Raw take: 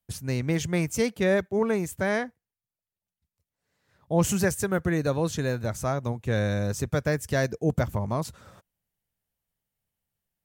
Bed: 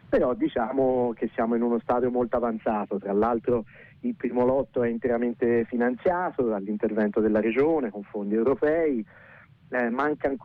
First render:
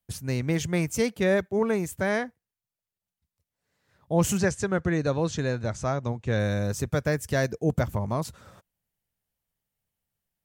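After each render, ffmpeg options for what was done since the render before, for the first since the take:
-filter_complex "[0:a]asplit=3[a][b][c];[a]afade=t=out:st=4.37:d=0.02[d];[b]lowpass=f=7.4k:w=0.5412,lowpass=f=7.4k:w=1.3066,afade=t=in:st=4.37:d=0.02,afade=t=out:st=6.38:d=0.02[e];[c]afade=t=in:st=6.38:d=0.02[f];[d][e][f]amix=inputs=3:normalize=0"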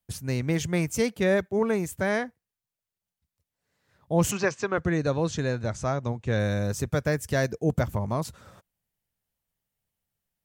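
-filter_complex "[0:a]asettb=1/sr,asplit=3[a][b][c];[a]atrim=end=4.314[d];[b]atrim=start=4.31:end=4.78,asetpts=PTS-STARTPTS,afade=t=in:d=0.004:c=qsin,afade=t=out:st=0.466:d=0.004:c=qsin,highpass=f=150:w=0.5412,highpass=f=150:w=1.3066,equalizer=f=180:t=q:w=4:g=-10,equalizer=f=1.1k:t=q:w=4:g=9,equalizer=f=2.5k:t=q:w=4:g=6,lowpass=f=6k:w=0.5412,lowpass=f=6k:w=1.3066[e];[c]atrim=start=4.776[f];[d][e]acrossfade=d=0.004:c1=hsin:c2=qsin[g];[g][f]acrossfade=d=0.004:c1=qsin:c2=hsin"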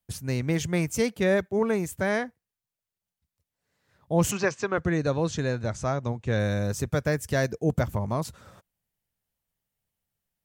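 -af anull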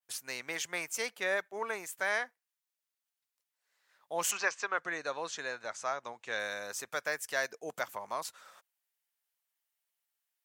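-af "highpass=990,adynamicequalizer=threshold=0.00501:dfrequency=2300:dqfactor=0.7:tfrequency=2300:tqfactor=0.7:attack=5:release=100:ratio=0.375:range=2:mode=cutabove:tftype=highshelf"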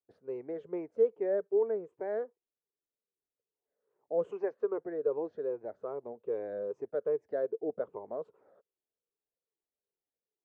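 -af "afftfilt=real='re*pow(10,9/40*sin(2*PI*(0.72*log(max(b,1)*sr/1024/100)/log(2)-(-2.5)*(pts-256)/sr)))':imag='im*pow(10,9/40*sin(2*PI*(0.72*log(max(b,1)*sr/1024/100)/log(2)-(-2.5)*(pts-256)/sr)))':win_size=1024:overlap=0.75,lowpass=f=430:t=q:w=4.9"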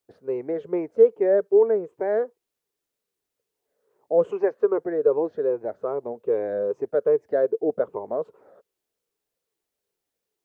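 -af "volume=11dB"

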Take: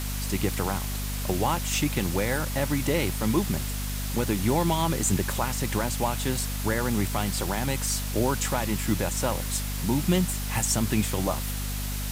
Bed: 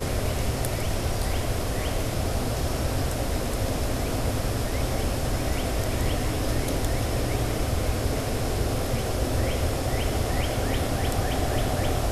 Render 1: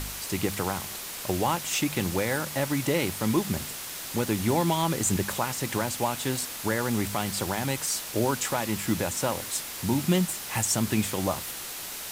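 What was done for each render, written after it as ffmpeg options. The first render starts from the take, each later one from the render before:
-af "bandreject=f=50:t=h:w=4,bandreject=f=100:t=h:w=4,bandreject=f=150:t=h:w=4,bandreject=f=200:t=h:w=4,bandreject=f=250:t=h:w=4"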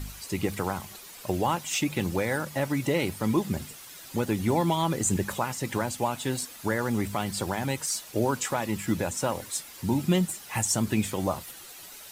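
-af "afftdn=nr=11:nf=-37"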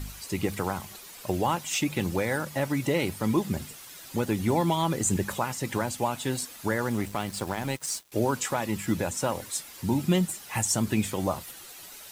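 -filter_complex "[0:a]asettb=1/sr,asplit=3[a][b][c];[a]atrim=end=6.894[d];[b]atrim=start=6.89:end=8.12,asetpts=PTS-STARTPTS,afade=t=in:d=0.004:c=qsin,afade=t=out:st=1.226:d=0.004:c=qsin,aeval=exprs='sgn(val(0))*max(abs(val(0))-0.00944,0)':c=same[e];[c]atrim=start=8.116[f];[d][e]acrossfade=d=0.004:c1=hsin:c2=qsin[g];[g][f]acrossfade=d=0.004:c1=qsin:c2=hsin"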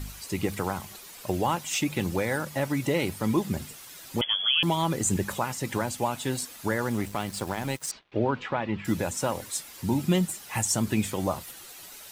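-filter_complex "[0:a]asettb=1/sr,asplit=3[a][b][c];[a]atrim=end=4.214[d];[b]atrim=start=4.21:end=4.63,asetpts=PTS-STARTPTS,afade=t=in:d=0.004:c=qsin,afade=t=out:st=0.416:d=0.004:c=qsin,lowpass=f=3k:t=q:w=0.5098,lowpass=f=3k:t=q:w=0.6013,lowpass=f=3k:t=q:w=0.9,lowpass=f=3k:t=q:w=2.563,afreqshift=-3500[e];[c]atrim=start=4.626[f];[d][e]acrossfade=d=0.004:c1=hsin:c2=qsin[g];[g][f]acrossfade=d=0.004:c1=qsin:c2=hsin,asettb=1/sr,asplit=3[h][i][j];[h]atrim=end=7.914[k];[i]atrim=start=7.91:end=8.85,asetpts=PTS-STARTPTS,afade=t=in:d=0.004:c=qsin,afade=t=out:st=0.936:d=0.004:c=qsin,lowpass=f=3.3k:w=0.5412,lowpass=f=3.3k:w=1.3066[l];[j]atrim=start=8.846[m];[k][l]acrossfade=d=0.004:c1=hsin:c2=qsin[n];[n][m]acrossfade=d=0.004:c1=qsin:c2=hsin"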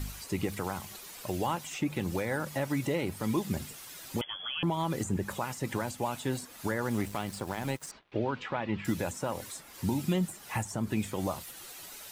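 -filter_complex "[0:a]acrossover=split=1900[a][b];[a]alimiter=limit=-20.5dB:level=0:latency=1:release=340[c];[b]acompressor=threshold=-42dB:ratio=6[d];[c][d]amix=inputs=2:normalize=0"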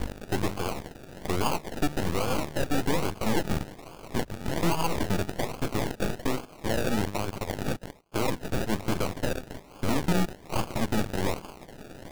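-af "acrusher=samples=33:mix=1:aa=0.000001:lfo=1:lforange=19.8:lforate=1.2,aeval=exprs='0.119*(cos(1*acos(clip(val(0)/0.119,-1,1)))-cos(1*PI/2))+0.0473*(cos(8*acos(clip(val(0)/0.119,-1,1)))-cos(8*PI/2))':c=same"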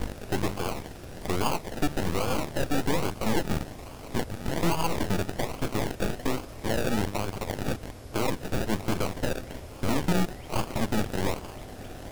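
-filter_complex "[1:a]volume=-18dB[a];[0:a][a]amix=inputs=2:normalize=0"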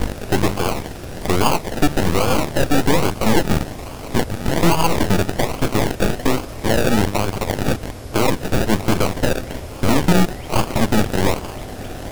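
-af "volume=10.5dB"

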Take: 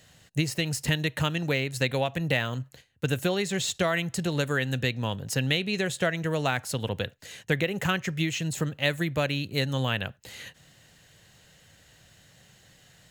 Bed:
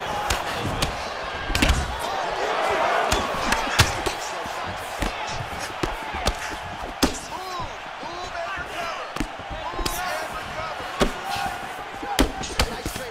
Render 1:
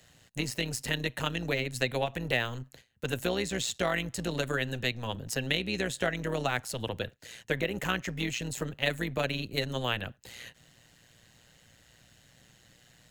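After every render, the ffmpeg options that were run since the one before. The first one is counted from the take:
-filter_complex "[0:a]acrossover=split=240[a][b];[a]volume=34dB,asoftclip=hard,volume=-34dB[c];[c][b]amix=inputs=2:normalize=0,tremolo=f=120:d=0.71"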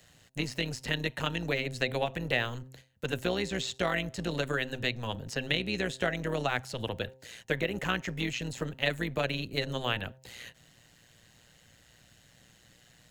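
-filter_complex "[0:a]bandreject=f=131:t=h:w=4,bandreject=f=262:t=h:w=4,bandreject=f=393:t=h:w=4,bandreject=f=524:t=h:w=4,bandreject=f=655:t=h:w=4,bandreject=f=786:t=h:w=4,bandreject=f=917:t=h:w=4,acrossover=split=6000[a][b];[b]acompressor=threshold=-51dB:ratio=4:attack=1:release=60[c];[a][c]amix=inputs=2:normalize=0"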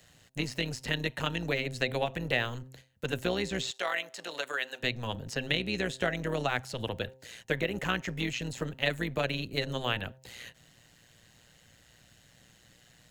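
-filter_complex "[0:a]asettb=1/sr,asplit=3[a][b][c];[a]atrim=end=3.714[d];[b]atrim=start=3.71:end=4.83,asetpts=PTS-STARTPTS,afade=t=in:d=0.004:c=qsin,afade=t=out:st=1.116:d=0.004:c=qsin,highpass=650[e];[c]atrim=start=4.826[f];[d][e]acrossfade=d=0.004:c1=hsin:c2=qsin[g];[g][f]acrossfade=d=0.004:c1=qsin:c2=hsin"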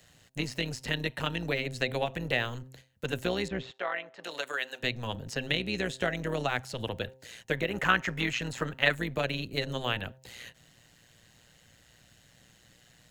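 -filter_complex "[0:a]asettb=1/sr,asplit=3[a][b][c];[a]atrim=end=0.934[d];[b]atrim=start=0.93:end=1.61,asetpts=PTS-STARTPTS,afade=t=in:d=0.004:c=qsin,afade=t=out:st=0.676:d=0.004:c=qsin,bandreject=f=6.7k:w=8[e];[c]atrim=start=1.606[f];[d][e]acrossfade=d=0.004:c1=hsin:c2=qsin[g];[g][f]acrossfade=d=0.004:c1=qsin:c2=hsin,asettb=1/sr,asplit=3[h][i][j];[h]atrim=end=3.484[k];[i]atrim=start=3.48:end=4.24,asetpts=PTS-STARTPTS,afade=t=in:d=0.004:c=qsin,afade=t=out:st=0.756:d=0.004:c=qsin,lowpass=2k[l];[j]atrim=start=4.236[m];[k][l]acrossfade=d=0.004:c1=hsin:c2=qsin[n];[n][m]acrossfade=d=0.004:c1=qsin:c2=hsin,asettb=1/sr,asplit=3[o][p][q];[o]atrim=end=7.704[r];[p]atrim=start=7.7:end=8.95,asetpts=PTS-STARTPTS,afade=t=in:d=0.004:c=qsin,afade=t=out:st=1.246:d=0.004:c=qsin,equalizer=f=1.4k:t=o:w=1.5:g=9[s];[q]atrim=start=8.946[t];[r][s]acrossfade=d=0.004:c1=hsin:c2=qsin[u];[u][t]acrossfade=d=0.004:c1=qsin:c2=hsin"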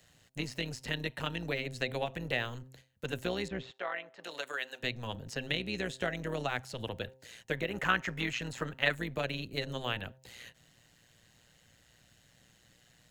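-af "volume=-4dB"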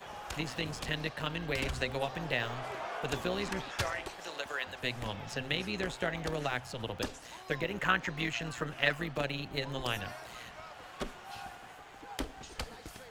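-filter_complex "[1:a]volume=-18dB[a];[0:a][a]amix=inputs=2:normalize=0"

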